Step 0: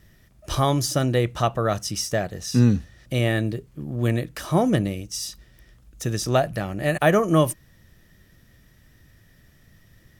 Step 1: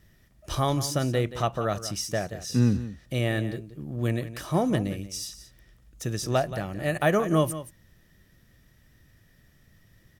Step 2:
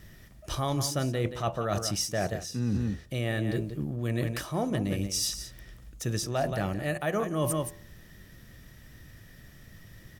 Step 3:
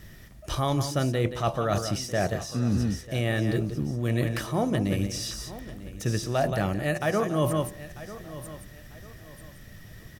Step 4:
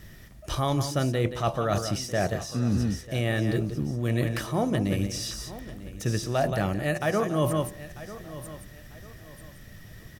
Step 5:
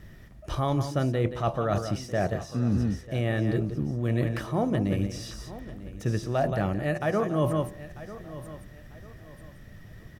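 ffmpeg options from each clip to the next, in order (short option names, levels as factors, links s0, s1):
-af "aecho=1:1:177:0.211,volume=0.596"
-af "bandreject=f=83.64:t=h:w=4,bandreject=f=167.28:t=h:w=4,bandreject=f=250.92:t=h:w=4,bandreject=f=334.56:t=h:w=4,bandreject=f=418.2:t=h:w=4,bandreject=f=501.84:t=h:w=4,bandreject=f=585.48:t=h:w=4,bandreject=f=669.12:t=h:w=4,bandreject=f=752.76:t=h:w=4,bandreject=f=836.4:t=h:w=4,bandreject=f=920.04:t=h:w=4,bandreject=f=1003.68:t=h:w=4,bandreject=f=1087.32:t=h:w=4,areverse,acompressor=threshold=0.02:ratio=12,areverse,volume=2.66"
-filter_complex "[0:a]aecho=1:1:945|1890|2835:0.158|0.0507|0.0162,acrossover=split=3700[s0][s1];[s1]acompressor=threshold=0.0112:ratio=4:attack=1:release=60[s2];[s0][s2]amix=inputs=2:normalize=0,volume=1.5"
-af anull
-af "highshelf=f=3000:g=-11"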